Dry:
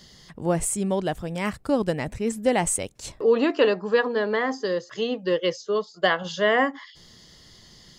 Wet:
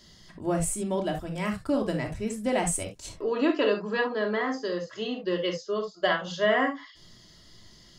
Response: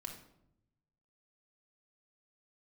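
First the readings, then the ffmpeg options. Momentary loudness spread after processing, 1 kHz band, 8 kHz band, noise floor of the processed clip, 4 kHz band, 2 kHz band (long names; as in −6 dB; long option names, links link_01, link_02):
8 LU, −3.5 dB, −4.0 dB, −54 dBFS, −3.0 dB, −3.5 dB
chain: -filter_complex "[1:a]atrim=start_sample=2205,atrim=end_sample=3528[link_01];[0:a][link_01]afir=irnorm=-1:irlink=0"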